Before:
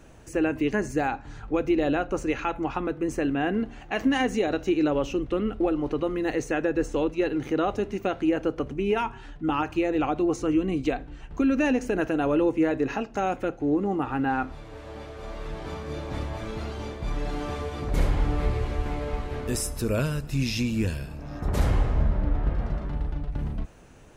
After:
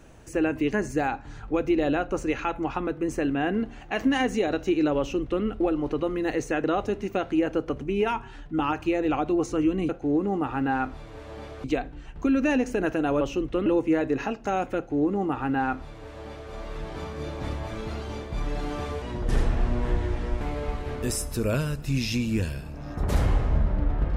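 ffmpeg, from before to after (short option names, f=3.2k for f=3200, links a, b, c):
-filter_complex "[0:a]asplit=8[a][b][c][d][e][f][g][h];[a]atrim=end=6.642[i];[b]atrim=start=7.538:end=10.792[j];[c]atrim=start=13.468:end=15.222[k];[d]atrim=start=10.788:end=12.362[l];[e]atrim=start=4.988:end=5.442[m];[f]atrim=start=12.358:end=17.724[n];[g]atrim=start=17.72:end=18.86,asetpts=PTS-STARTPTS,asetrate=36162,aresample=44100[o];[h]atrim=start=18.856[p];[i][j]acrossfade=d=0.004:c1=hsin:c2=hsin[q];[q][k]acrossfade=d=0.004:c1=hsin:c2=hsin[r];[r][l]acrossfade=d=0.004:c1=hsin:c2=hsin[s];[s][m]acrossfade=d=0.004:c1=hsin:c2=hsin[t];[t][n]acrossfade=d=0.004:c1=hsin:c2=hsin[u];[u][o]acrossfade=d=0.004:c1=hsin:c2=hsin[v];[v][p]acrossfade=d=0.004:c1=hsin:c2=hsin"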